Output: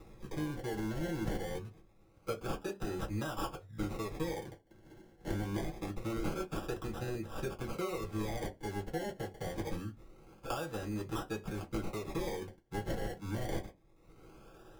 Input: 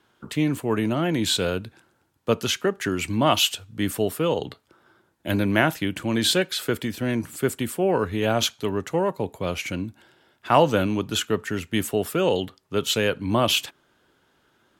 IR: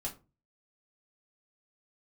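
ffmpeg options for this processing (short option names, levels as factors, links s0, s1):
-filter_complex "[0:a]acompressor=mode=upward:threshold=0.0112:ratio=2.5,equalizer=f=125:t=o:w=1:g=-4,equalizer=f=250:t=o:w=1:g=-8,equalizer=f=1000:t=o:w=1:g=-8,acompressor=threshold=0.0224:ratio=6,acrusher=samples=28:mix=1:aa=0.000001:lfo=1:lforange=16.8:lforate=0.25[s0];[1:a]atrim=start_sample=2205,asetrate=83790,aresample=44100[s1];[s0][s1]afir=irnorm=-1:irlink=0,volume=1.12"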